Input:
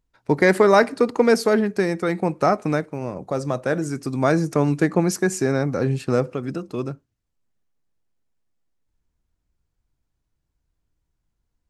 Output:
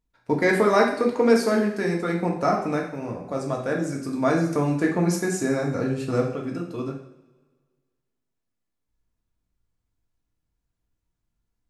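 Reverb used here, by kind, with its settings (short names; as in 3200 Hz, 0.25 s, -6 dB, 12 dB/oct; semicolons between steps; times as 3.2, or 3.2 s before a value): two-slope reverb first 0.58 s, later 1.7 s, DRR -1 dB; gain -6 dB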